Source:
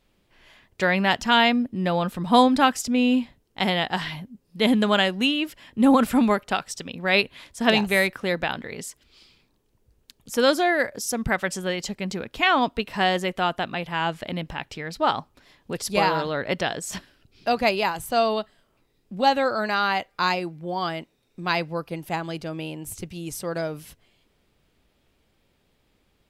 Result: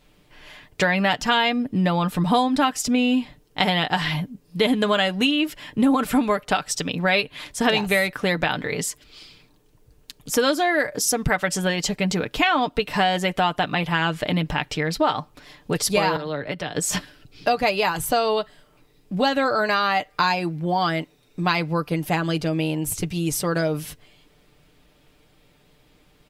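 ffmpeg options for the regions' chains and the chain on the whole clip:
ffmpeg -i in.wav -filter_complex "[0:a]asettb=1/sr,asplit=3[link_01][link_02][link_03];[link_01]atrim=end=16.164[link_04];[link_02]atrim=start=16.16:end=16.76,asetpts=PTS-STARTPTS,afade=type=in:duration=0.004:curve=qsin,afade=type=out:start_time=0.596:duration=0.004:curve=qsin,equalizer=frequency=6600:width_type=o:width=0.46:gain=-6,acrossover=split=140|460[link_05][link_06][link_07];[link_05]acompressor=threshold=-53dB:ratio=4[link_08];[link_06]acompressor=threshold=-43dB:ratio=4[link_09];[link_07]acompressor=threshold=-40dB:ratio=4[link_10];[link_08][link_09][link_10]amix=inputs=3:normalize=0[link_11];[link_03]atrim=start=16.756[link_12];[link_04][link_11]acrossfade=duration=0.004:curve1=hsin:curve2=qsin[link_13];[link_13][link_12]acrossfade=duration=0.004:curve1=qsin:curve2=hsin,aecho=1:1:6.7:0.51,acompressor=threshold=-26dB:ratio=4,volume=8dB" out.wav

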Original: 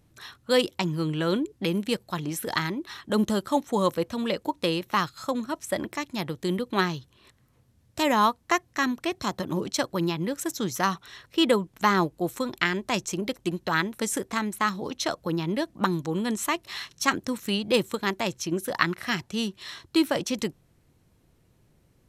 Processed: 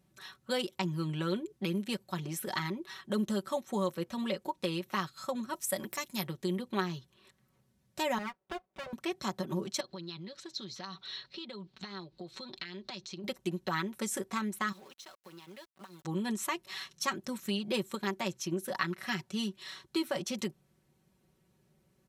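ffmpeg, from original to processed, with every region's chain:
ffmpeg -i in.wav -filter_complex "[0:a]asettb=1/sr,asplit=3[link_01][link_02][link_03];[link_01]atrim=end=5.534[link_04];[link_02]atrim=start=5.53:end=6.27,asetpts=PTS-STARTPTS,afade=type=in:duration=0.004:curve=qsin,afade=type=out:start_time=0.736:duration=0.004:curve=qsin,aemphasis=mode=production:type=50fm,bandreject=frequency=350:width=8.3[link_05];[link_03]atrim=start=6.266[link_06];[link_04][link_05]acrossfade=duration=0.004:curve1=hsin:curve2=qsin[link_07];[link_07][link_06]acrossfade=duration=0.004:curve1=qsin:curve2=hsin,asettb=1/sr,asplit=3[link_08][link_09][link_10];[link_08]atrim=end=8.184[link_11];[link_09]atrim=start=8.18:end=8.93,asetpts=PTS-STARTPTS,afade=type=in:duration=0.004:curve=qsin,afade=type=out:start_time=0.746:duration=0.004:curve=qsin,bandpass=frequency=420:width_type=q:width=1.2,aecho=1:1:5.2:0.48,atrim=end_sample=33075,aeval=exprs='abs(val(0))':channel_layout=same[link_12];[link_10]atrim=start=8.926[link_13];[link_11][link_12]acrossfade=duration=0.004:curve1=hsin:curve2=qsin[link_14];[link_14][link_13]acrossfade=duration=0.004:curve1=qsin:curve2=hsin,asettb=1/sr,asplit=3[link_15][link_16][link_17];[link_15]atrim=end=9.804[link_18];[link_16]atrim=start=9.8:end=13.24,asetpts=PTS-STARTPTS,afade=type=in:duration=0.004:curve=qsin,afade=type=out:start_time=3.436:duration=0.004:curve=qsin,acompressor=threshold=-36dB:ratio=12:attack=3.2:release=140:knee=1:detection=peak,lowpass=frequency=4200:width_type=q:width=5.8[link_19];[link_17]atrim=start=13.236[link_20];[link_18][link_19]acrossfade=duration=0.004:curve1=hsin:curve2=qsin[link_21];[link_21][link_20]acrossfade=duration=0.004:curve1=qsin:curve2=hsin,asettb=1/sr,asplit=3[link_22][link_23][link_24];[link_22]atrim=end=14.724[link_25];[link_23]atrim=start=14.72:end=16.05,asetpts=PTS-STARTPTS,afade=type=in:duration=0.004:curve=qsin,afade=type=out:start_time=1.326:duration=0.004:curve=qsin,highpass=frequency=1000:poles=1,acompressor=threshold=-43dB:ratio=4:attack=3.2:release=140:knee=1:detection=peak,aeval=exprs='val(0)*gte(abs(val(0)),0.00335)':channel_layout=same[link_26];[link_24]atrim=start=16.046[link_27];[link_25][link_26]acrossfade=duration=0.004:curve1=hsin:curve2=qsin[link_28];[link_28][link_27]acrossfade=duration=0.004:curve1=qsin:curve2=hsin,highpass=69,aecho=1:1:5.3:0.77,acompressor=threshold=-23dB:ratio=2,volume=-7.5dB" out.wav

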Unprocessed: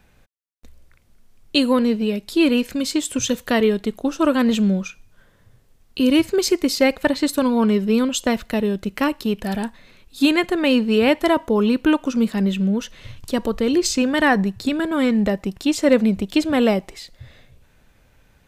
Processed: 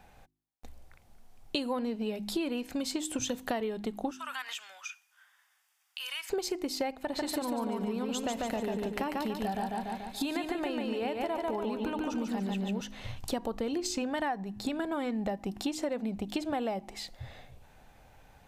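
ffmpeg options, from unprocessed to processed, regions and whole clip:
ffmpeg -i in.wav -filter_complex "[0:a]asettb=1/sr,asplit=3[link_01][link_02][link_03];[link_01]atrim=end=4.114[link_04];[link_02]atrim=start=4.11:end=6.3,asetpts=PTS-STARTPTS,afade=type=in:duration=0.004:curve=qsin,afade=type=out:start_time=2.186:duration=0.004:curve=qsin,highpass=frequency=1300:width=0.5412,highpass=frequency=1300:width=1.3066,bandreject=frequency=4100:width=7,acompressor=threshold=-34dB:ratio=3:attack=3.2:release=140:knee=1:detection=peak[link_05];[link_03]atrim=start=6.296[link_06];[link_04][link_05]acrossfade=duration=0.004:curve1=hsin:curve2=qsin[link_07];[link_07][link_06]acrossfade=duration=0.004:curve1=qsin:curve2=hsin,asettb=1/sr,asplit=3[link_08][link_09][link_10];[link_08]atrim=end=6.974[link_11];[link_09]atrim=start=6.97:end=12.81,asetpts=PTS-STARTPTS,afade=type=in:duration=0.004:curve=qsin,afade=type=out:start_time=5.836:duration=0.004:curve=qsin,acompressor=threshold=-20dB:ratio=3:attack=3.2:release=140:knee=1:detection=peak,aecho=1:1:144|288|432|576|720|864:0.708|0.311|0.137|0.0603|0.0265|0.0117,atrim=end_sample=257544[link_12];[link_10]atrim=start=12.806[link_13];[link_11][link_12]acrossfade=duration=0.004:curve1=hsin:curve2=qsin[link_14];[link_14][link_13]acrossfade=duration=0.004:curve1=qsin:curve2=hsin,equalizer=frequency=780:width_type=o:width=0.51:gain=12.5,bandreject=frequency=51.66:width_type=h:width=4,bandreject=frequency=103.32:width_type=h:width=4,bandreject=frequency=154.98:width_type=h:width=4,bandreject=frequency=206.64:width_type=h:width=4,bandreject=frequency=258.3:width_type=h:width=4,bandreject=frequency=309.96:width_type=h:width=4,bandreject=frequency=361.62:width_type=h:width=4,acompressor=threshold=-27dB:ratio=12,volume=-2.5dB" out.wav

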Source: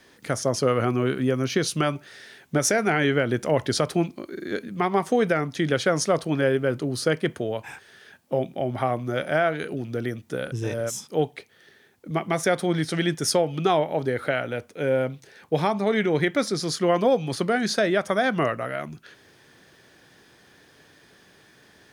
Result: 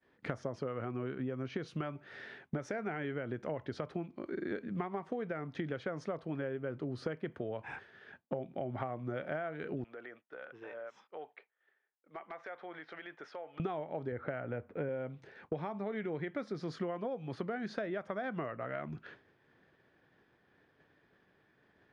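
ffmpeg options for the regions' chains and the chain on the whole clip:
ffmpeg -i in.wav -filter_complex "[0:a]asettb=1/sr,asplit=3[link_01][link_02][link_03];[link_01]atrim=end=9.844[link_04];[link_02]atrim=start=9.84:end=13.6,asetpts=PTS-STARTPTS,afade=type=in:duration=0.004:curve=qsin,afade=type=out:start_time=3.756:duration=0.004:curve=qsin,highpass=730,lowpass=2700,acompressor=threshold=-43dB:ratio=4:attack=3.2:release=140:knee=1:detection=peak,aeval=exprs='0.02*(abs(mod(val(0)/0.02+3,4)-2)-1)':channel_layout=same[link_05];[link_03]atrim=start=13.596[link_06];[link_04][link_05]acrossfade=duration=0.004:curve1=hsin:curve2=qsin[link_07];[link_07][link_06]acrossfade=duration=0.004:curve1=qsin:curve2=hsin,asettb=1/sr,asplit=3[link_08][link_09][link_10];[link_08]atrim=end=14.124[link_11];[link_09]atrim=start=14.12:end=14.89,asetpts=PTS-STARTPTS,afade=type=in:duration=0.004:curve=qsin,afade=type=out:start_time=0.766:duration=0.004:curve=qsin,lowpass=2000,lowshelf=frequency=120:gain=7.5[link_12];[link_10]atrim=start=14.886[link_13];[link_11][link_12]acrossfade=duration=0.004:curve1=hsin:curve2=qsin[link_14];[link_14][link_13]acrossfade=duration=0.004:curve1=qsin:curve2=hsin,agate=range=-33dB:threshold=-45dB:ratio=3:detection=peak,lowpass=2100,acompressor=threshold=-34dB:ratio=16" out.wav

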